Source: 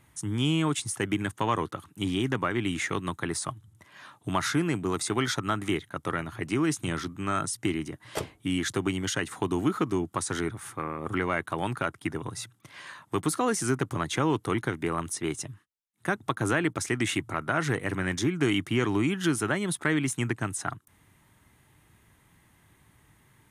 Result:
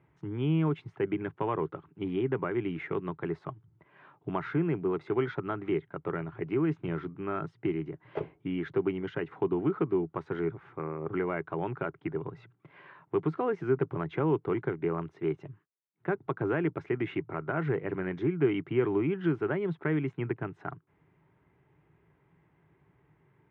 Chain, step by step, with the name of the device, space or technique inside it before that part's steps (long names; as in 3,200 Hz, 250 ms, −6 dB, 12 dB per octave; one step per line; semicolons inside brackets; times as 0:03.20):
bass cabinet (loudspeaker in its box 70–2,200 Hz, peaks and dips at 92 Hz −7 dB, 160 Hz +7 dB, 220 Hz −8 dB, 400 Hz +9 dB, 1,200 Hz −4 dB, 1,800 Hz −6 dB)
level −4 dB